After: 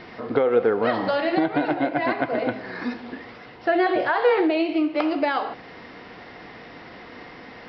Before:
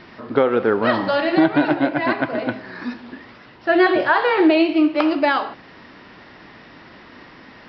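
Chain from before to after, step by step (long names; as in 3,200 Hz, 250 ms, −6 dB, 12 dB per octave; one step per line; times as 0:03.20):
downward compressor 2.5 to 1, threshold −23 dBFS, peak gain reduction 8.5 dB
hollow resonant body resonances 480/720/2,100 Hz, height 9 dB, ringing for 45 ms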